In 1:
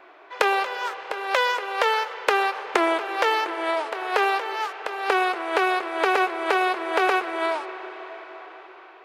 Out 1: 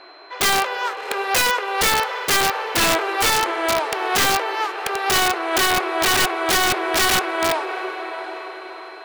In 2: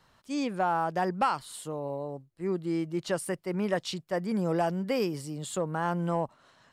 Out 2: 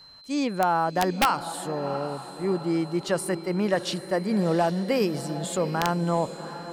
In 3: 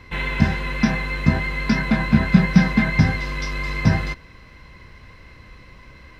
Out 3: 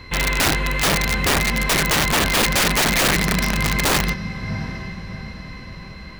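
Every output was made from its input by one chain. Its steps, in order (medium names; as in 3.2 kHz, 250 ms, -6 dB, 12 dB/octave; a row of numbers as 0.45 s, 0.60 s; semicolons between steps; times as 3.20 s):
whistle 4.1 kHz -52 dBFS; echo that smears into a reverb 731 ms, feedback 46%, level -12 dB; integer overflow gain 16.5 dB; peak normalisation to -12 dBFS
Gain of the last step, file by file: +4.5 dB, +4.5 dB, +4.5 dB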